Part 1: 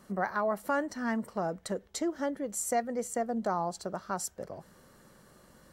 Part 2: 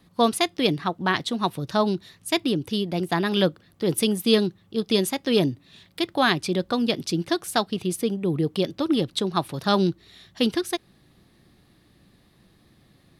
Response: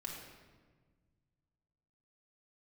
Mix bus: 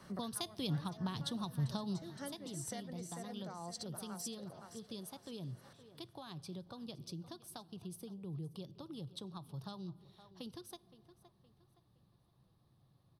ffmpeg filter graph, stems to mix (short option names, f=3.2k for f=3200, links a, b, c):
-filter_complex "[0:a]lowpass=4.4k,aemphasis=mode=production:type=bsi,volume=1dB,asplit=2[a][b];[b]volume=-17dB[c];[1:a]equalizer=f=125:t=o:w=1:g=10,equalizer=f=250:t=o:w=1:g=-6,equalizer=f=1k:t=o:w=1:g=8,equalizer=f=2k:t=o:w=1:g=-12,equalizer=f=8k:t=o:w=1:g=-3,acompressor=threshold=-22dB:ratio=6,volume=-6.5dB,afade=t=out:st=1.9:d=0.48:silence=0.298538,asplit=4[d][e][f][g];[e]volume=-17dB[h];[f]volume=-19.5dB[i];[g]apad=whole_len=252620[j];[a][j]sidechaincompress=threshold=-49dB:ratio=10:attack=31:release=295[k];[2:a]atrim=start_sample=2205[l];[h][l]afir=irnorm=-1:irlink=0[m];[c][i]amix=inputs=2:normalize=0,aecho=0:1:517|1034|1551|2068|2585:1|0.34|0.116|0.0393|0.0134[n];[k][d][m][n]amix=inputs=4:normalize=0,acrossover=split=230|3000[o][p][q];[p]acompressor=threshold=-57dB:ratio=2[r];[o][r][q]amix=inputs=3:normalize=0,bandreject=f=7.1k:w=5.9"